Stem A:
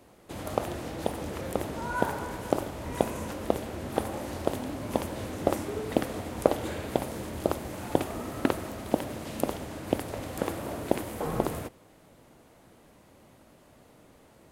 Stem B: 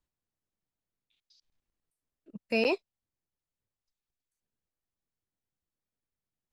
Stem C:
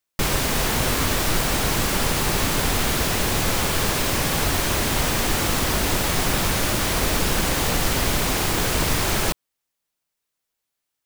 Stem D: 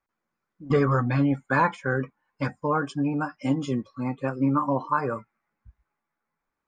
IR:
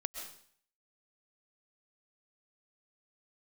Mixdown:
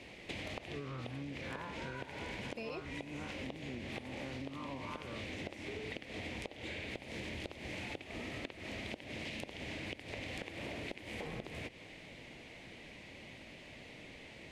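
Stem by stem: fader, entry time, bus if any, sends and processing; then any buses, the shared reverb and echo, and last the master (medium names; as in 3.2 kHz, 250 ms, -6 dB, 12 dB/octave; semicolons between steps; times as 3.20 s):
+2.5 dB, 0.00 s, bus A, no send, low-pass 4.1 kHz 12 dB/octave; resonant high shelf 1.7 kHz +8.5 dB, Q 3
-2.5 dB, 0.05 s, bus B, no send, none
mute
-1.5 dB, 0.00 s, bus A, no send, spectral blur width 121 ms; attacks held to a fixed rise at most 190 dB/s
bus A: 0.0 dB, compression, threshold -34 dBFS, peak gain reduction 20.5 dB
bus B: 0.0 dB, peak limiter -24.5 dBFS, peak gain reduction 6 dB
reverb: none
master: compression, threshold -40 dBFS, peak gain reduction 12 dB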